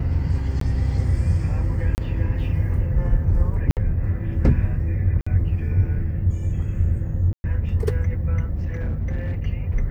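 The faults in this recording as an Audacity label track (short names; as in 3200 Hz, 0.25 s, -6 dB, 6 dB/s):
0.600000	0.610000	gap 13 ms
1.950000	1.980000	gap 29 ms
3.710000	3.770000	gap 58 ms
5.210000	5.260000	gap 55 ms
7.330000	7.440000	gap 0.11 s
8.540000	9.400000	clipped -21 dBFS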